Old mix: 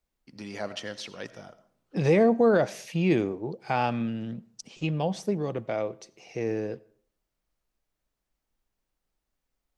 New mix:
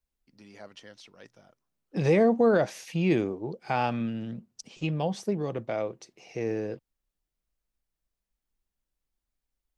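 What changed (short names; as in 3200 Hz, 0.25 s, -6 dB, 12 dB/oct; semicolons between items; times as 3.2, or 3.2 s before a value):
first voice -9.5 dB; reverb: off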